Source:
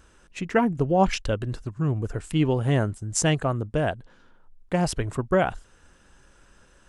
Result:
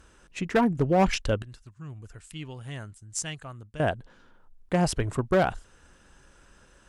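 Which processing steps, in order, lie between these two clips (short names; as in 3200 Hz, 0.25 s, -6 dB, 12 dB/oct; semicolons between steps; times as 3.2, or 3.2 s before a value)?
1.42–3.8 passive tone stack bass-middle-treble 5-5-5; one-sided clip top -17 dBFS, bottom -14.5 dBFS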